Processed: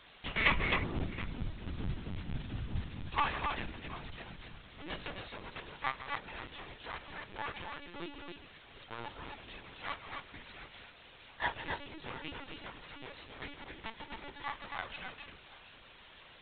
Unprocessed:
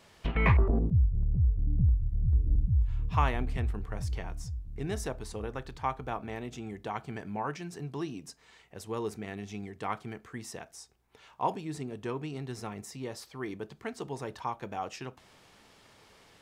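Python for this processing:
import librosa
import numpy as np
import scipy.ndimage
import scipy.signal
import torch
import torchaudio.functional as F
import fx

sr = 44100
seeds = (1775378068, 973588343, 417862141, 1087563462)

y = fx.lower_of_two(x, sr, delay_ms=3.5)
y = scipy.signal.sosfilt(scipy.signal.butter(2, 68.0, 'highpass', fs=sr, output='sos'), y)
y = fx.tilt_shelf(y, sr, db=-8.0, hz=1500.0)
y = fx.quant_dither(y, sr, seeds[0], bits=8, dither='triangular')
y = np.sign(y) * np.maximum(np.abs(y) - 10.0 ** (-49.5 / 20.0), 0.0)
y = fx.echo_multitap(y, sr, ms=(42, 155, 264, 734), db=(-15.0, -13.0, -4.5, -17.0))
y = fx.lpc_vocoder(y, sr, seeds[1], excitation='pitch_kept', order=16)
y = F.gain(torch.from_numpy(y), 1.0).numpy()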